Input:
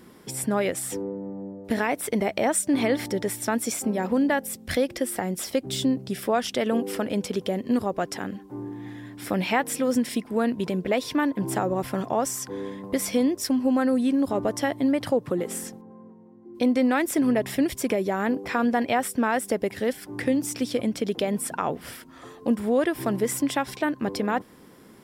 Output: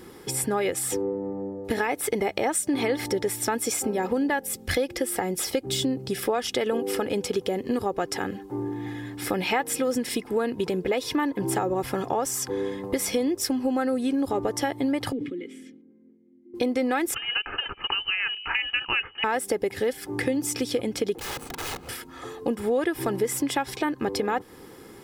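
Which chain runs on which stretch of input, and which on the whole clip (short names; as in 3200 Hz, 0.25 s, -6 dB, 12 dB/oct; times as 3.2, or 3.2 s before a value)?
15.12–16.54 vowel filter i + sustainer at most 75 dB/s
17.14–19.24 HPF 540 Hz 24 dB/oct + short-mantissa float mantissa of 4-bit + inverted band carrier 3400 Hz
21.16–21.89 median filter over 25 samples + low shelf 400 Hz -3 dB + wrapped overs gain 33 dB
whole clip: comb 2.4 ms, depth 49%; compressor 2.5:1, threshold -29 dBFS; gain +4.5 dB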